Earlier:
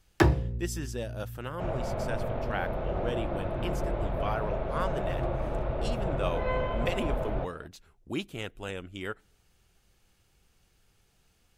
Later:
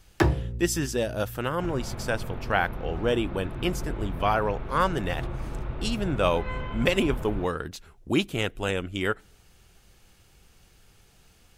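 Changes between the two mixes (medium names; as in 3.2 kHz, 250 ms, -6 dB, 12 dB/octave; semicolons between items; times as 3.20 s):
speech +9.5 dB; second sound: add peaking EQ 610 Hz -14.5 dB 0.75 oct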